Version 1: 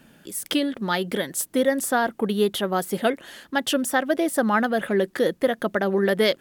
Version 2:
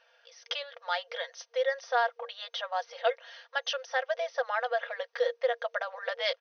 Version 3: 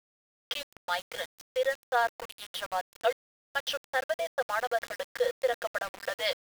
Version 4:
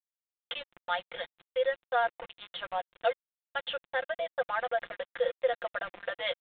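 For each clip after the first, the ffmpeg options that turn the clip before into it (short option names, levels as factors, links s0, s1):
-af "aecho=1:1:4.3:0.53,afftfilt=real='re*between(b*sr/4096,470,6300)':imag='im*between(b*sr/4096,470,6300)':win_size=4096:overlap=0.75,volume=0.447"
-af "aeval=exprs='val(0)*gte(abs(val(0)),0.0158)':c=same"
-af "aresample=8000,aresample=44100,aecho=1:1:5.7:0.41,volume=0.75"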